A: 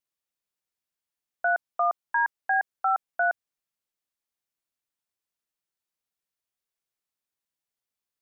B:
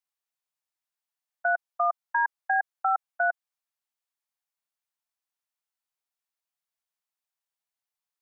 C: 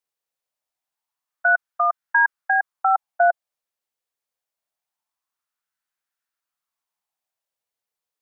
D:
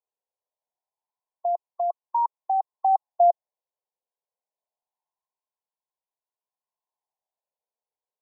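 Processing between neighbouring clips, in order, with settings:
resonant low shelf 510 Hz -12.5 dB, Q 1.5; level held to a coarse grid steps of 23 dB
sweeping bell 0.25 Hz 470–1600 Hz +9 dB; trim +2 dB
brick-wall FIR band-pass 360–1100 Hz

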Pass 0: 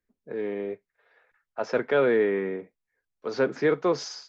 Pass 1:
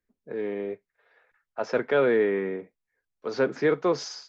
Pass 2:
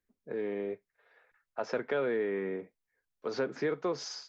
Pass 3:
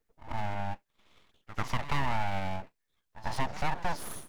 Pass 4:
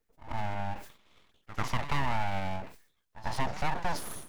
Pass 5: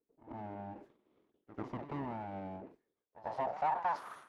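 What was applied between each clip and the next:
no audible change
compression 2.5:1, threshold -29 dBFS, peak gain reduction 8 dB; trim -2 dB
reverse echo 93 ms -14.5 dB; full-wave rectifier; trim +4 dB
decay stretcher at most 120 dB/s
band-pass sweep 340 Hz -> 1.3 kHz, 2.79–4.19 s; trim +3.5 dB

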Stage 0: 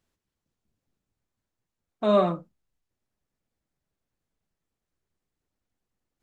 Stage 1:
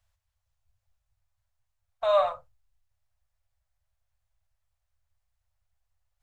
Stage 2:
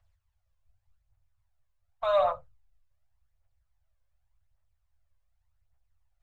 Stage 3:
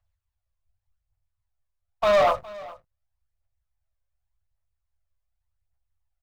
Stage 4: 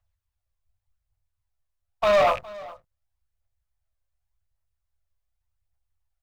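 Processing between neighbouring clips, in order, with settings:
inverse Chebyshev band-stop 160–400 Hz, stop band 40 dB; bass shelf 240 Hz +9.5 dB
phaser 0.87 Hz, delay 2 ms, feedback 49%; treble shelf 3.7 kHz -9.5 dB
waveshaping leveller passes 3; delay 412 ms -20 dB
rattle on loud lows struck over -44 dBFS, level -22 dBFS

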